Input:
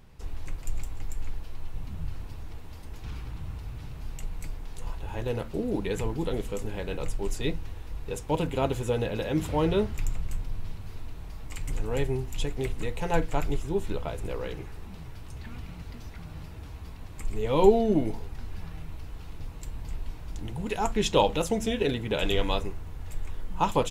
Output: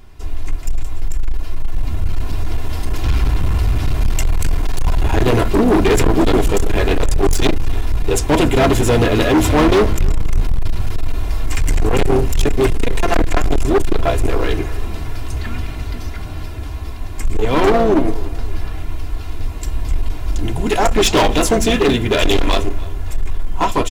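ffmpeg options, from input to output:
-filter_complex "[0:a]aecho=1:1:2.9:0.68,dynaudnorm=f=890:g=5:m=5.01,asplit=2[s0][s1];[s1]asetrate=33038,aresample=44100,atempo=1.33484,volume=0.355[s2];[s0][s2]amix=inputs=2:normalize=0,volume=7.94,asoftclip=hard,volume=0.126,asplit=2[s3][s4];[s4]adelay=292,lowpass=f=4200:p=1,volume=0.1,asplit=2[s5][s6];[s6]adelay=292,lowpass=f=4200:p=1,volume=0.4,asplit=2[s7][s8];[s8]adelay=292,lowpass=f=4200:p=1,volume=0.4[s9];[s3][s5][s7][s9]amix=inputs=4:normalize=0,volume=2.66"

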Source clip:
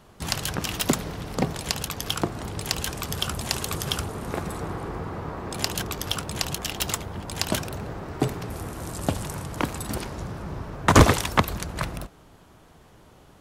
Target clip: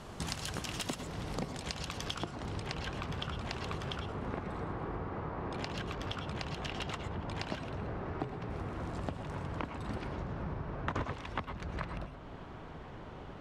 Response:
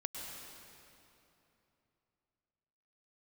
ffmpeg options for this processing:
-filter_complex "[0:a]asetnsamples=n=441:p=0,asendcmd='1.6 lowpass f 5400;2.6 lowpass f 2800',lowpass=8900,acompressor=threshold=0.00794:ratio=6[s0];[1:a]atrim=start_sample=2205,afade=t=out:st=0.18:d=0.01,atrim=end_sample=8379[s1];[s0][s1]afir=irnorm=-1:irlink=0,volume=2.51"

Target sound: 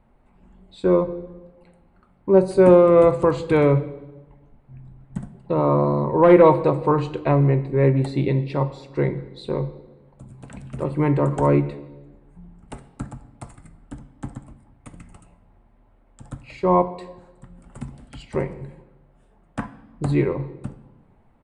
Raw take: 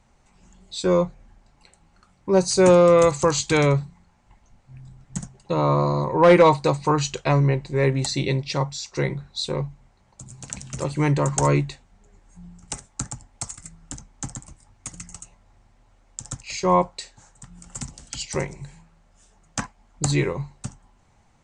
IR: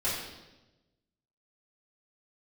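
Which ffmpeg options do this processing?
-filter_complex "[0:a]firequalizer=gain_entry='entry(130,0);entry(270,4);entry(830,-1);entry(3600,-12);entry(6200,-30);entry(10000,-8)':delay=0.05:min_phase=1,asplit=2[s0][s1];[1:a]atrim=start_sample=2205[s2];[s1][s2]afir=irnorm=-1:irlink=0,volume=0.126[s3];[s0][s3]amix=inputs=2:normalize=0"

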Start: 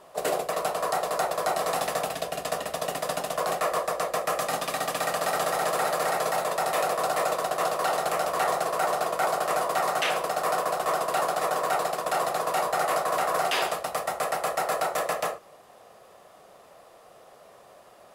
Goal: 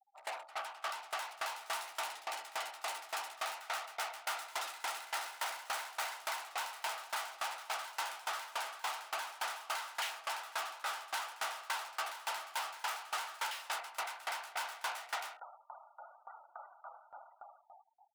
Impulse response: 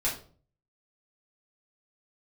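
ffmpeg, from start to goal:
-filter_complex "[0:a]lowpass=11000,asplit=2[s0][s1];[1:a]atrim=start_sample=2205[s2];[s1][s2]afir=irnorm=-1:irlink=0,volume=0.15[s3];[s0][s3]amix=inputs=2:normalize=0,dynaudnorm=f=300:g=7:m=4.47,afftfilt=real='re*gte(hypot(re,im),0.0224)':imag='im*gte(hypot(re,im),0.0224)':win_size=1024:overlap=0.75,afreqshift=160,volume=25.1,asoftclip=hard,volume=0.0398,highpass=1000,highshelf=f=4300:g=-2.5,aeval=exprs='val(0)*pow(10,-22*if(lt(mod(3.5*n/s,1),2*abs(3.5)/1000),1-mod(3.5*n/s,1)/(2*abs(3.5)/1000),(mod(3.5*n/s,1)-2*abs(3.5)/1000)/(1-2*abs(3.5)/1000))/20)':c=same,volume=0.794"

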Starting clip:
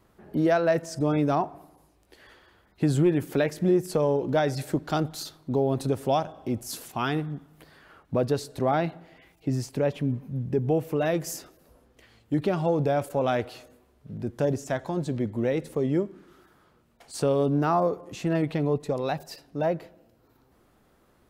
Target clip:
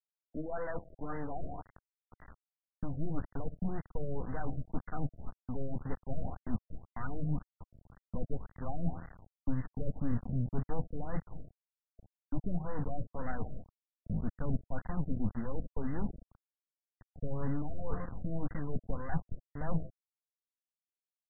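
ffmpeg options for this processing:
-filter_complex "[0:a]tiltshelf=f=1300:g=-7,aecho=1:1:4.1:0.46,asplit=2[s0][s1];[s1]adelay=180,lowpass=f=2700:p=1,volume=0.0708,asplit=2[s2][s3];[s3]adelay=180,lowpass=f=2700:p=1,volume=0.53,asplit=2[s4][s5];[s5]adelay=180,lowpass=f=2700:p=1,volume=0.53,asplit=2[s6][s7];[s7]adelay=180,lowpass=f=2700:p=1,volume=0.53[s8];[s0][s2][s4][s6][s8]amix=inputs=5:normalize=0,areverse,acompressor=threshold=0.0141:ratio=8,areverse,flanger=delay=5.5:depth=5.8:regen=76:speed=0.36:shape=sinusoidal,aeval=exprs='0.0282*(cos(1*acos(clip(val(0)/0.0282,-1,1)))-cos(1*PI/2))+0.00158*(cos(2*acos(clip(val(0)/0.0282,-1,1)))-cos(2*PI/2))+0.000158*(cos(3*acos(clip(val(0)/0.0282,-1,1)))-cos(3*PI/2))+0.00794*(cos(4*acos(clip(val(0)/0.0282,-1,1)))-cos(4*PI/2))+0.00501*(cos(5*acos(clip(val(0)/0.0282,-1,1)))-cos(5*PI/2))':c=same,aresample=8000,aeval=exprs='val(0)*gte(abs(val(0)),0.00631)':c=same,aresample=44100,asubboost=boost=7.5:cutoff=150,afftfilt=real='re*lt(b*sr/1024,660*pow(2100/660,0.5+0.5*sin(2*PI*1.9*pts/sr)))':imag='im*lt(b*sr/1024,660*pow(2100/660,0.5+0.5*sin(2*PI*1.9*pts/sr)))':win_size=1024:overlap=0.75,volume=1.41"

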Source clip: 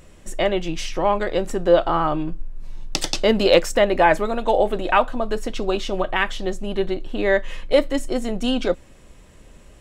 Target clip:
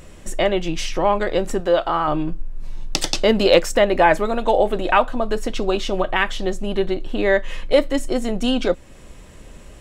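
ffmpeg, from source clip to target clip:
-filter_complex "[0:a]asettb=1/sr,asplit=3[s0][s1][s2];[s0]atrim=end=1.604[s3];[s1]atrim=start=1.6:end=2.08,asetpts=PTS-STARTPTS,afade=t=in:d=0.004:c=qsin,afade=t=out:st=0.476:d=0.004:c=qsin,lowshelf=f=480:g=-8[s4];[s2]atrim=start=2.076[s5];[s3][s4]acrossfade=d=0.004:c1=hsin:c2=qsin[s6];[s6][s5]acrossfade=d=0.004:c1=qsin:c2=hsin,asplit=2[s7][s8];[s8]acompressor=threshold=0.0316:ratio=6,volume=0.891[s9];[s7][s9]amix=inputs=2:normalize=0"

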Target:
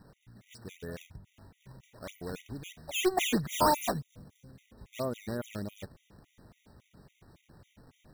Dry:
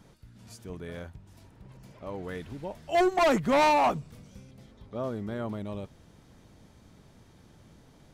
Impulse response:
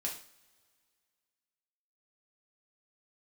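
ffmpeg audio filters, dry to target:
-filter_complex "[0:a]acrusher=samples=13:mix=1:aa=0.000001:lfo=1:lforange=20.8:lforate=3.1,asettb=1/sr,asplit=3[s0][s1][s2];[s0]atrim=end=3.514[s3];[s1]atrim=start=3.51:end=4.49,asetpts=PTS-STARTPTS,afade=t=in:d=0.004:c=qsin,afade=t=out:st=0.976:d=0.004:c=qsin,equalizer=f=2300:t=o:w=1.2:g=-8.5[s4];[s2]atrim=start=4.486[s5];[s3][s4]acrossfade=d=0.004:c1=hsin:c2=qsin[s6];[s6][s5]acrossfade=d=0.004:c1=qsin:c2=hsin,afftfilt=real='re*gt(sin(2*PI*3.6*pts/sr)*(1-2*mod(floor(b*sr/1024/1900),2)),0)':imag='im*gt(sin(2*PI*3.6*pts/sr)*(1-2*mod(floor(b*sr/1024/1900),2)),0)':win_size=1024:overlap=0.75"

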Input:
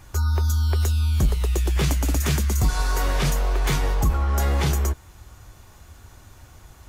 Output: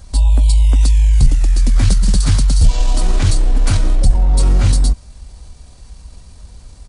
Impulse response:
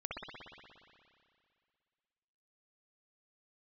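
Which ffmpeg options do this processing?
-af "asetrate=29433,aresample=44100,atempo=1.49831,bass=f=250:g=11,treble=f=4000:g=9"

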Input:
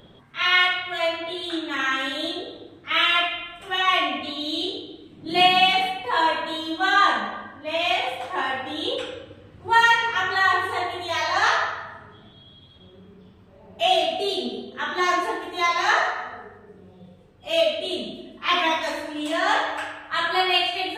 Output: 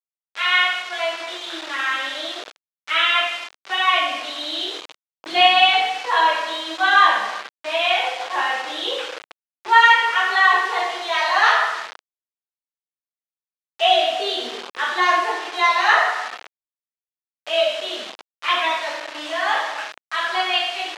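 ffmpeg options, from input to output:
-af "dynaudnorm=f=250:g=31:m=2.24,acrusher=bits=4:mix=0:aa=0.000001,highpass=590,lowpass=4300,volume=1.19"

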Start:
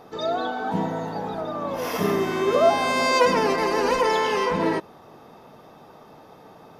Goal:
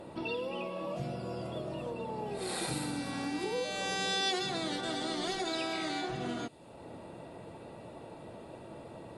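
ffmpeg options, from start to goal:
-filter_complex "[0:a]acrossover=split=4100[s0][s1];[s0]acompressor=threshold=0.0141:ratio=4[s2];[s2][s1]amix=inputs=2:normalize=0,asetrate=32667,aresample=44100"

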